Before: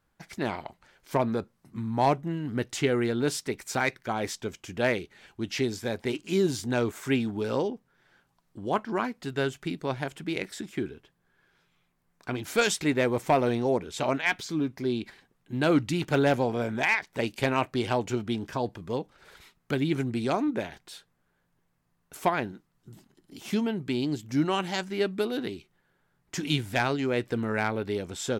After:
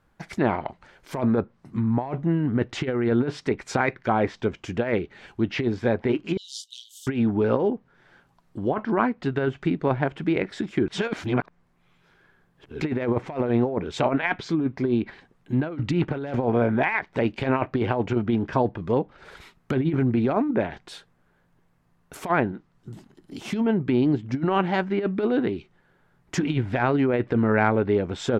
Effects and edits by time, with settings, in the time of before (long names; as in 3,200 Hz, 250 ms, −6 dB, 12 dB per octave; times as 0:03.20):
0:06.37–0:07.07: Chebyshev high-pass filter 3,000 Hz, order 8
0:10.88–0:12.81: reverse
whole clip: high-shelf EQ 3,400 Hz −9.5 dB; compressor whose output falls as the input rises −28 dBFS, ratio −0.5; treble cut that deepens with the level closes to 2,200 Hz, closed at −27.5 dBFS; level +7 dB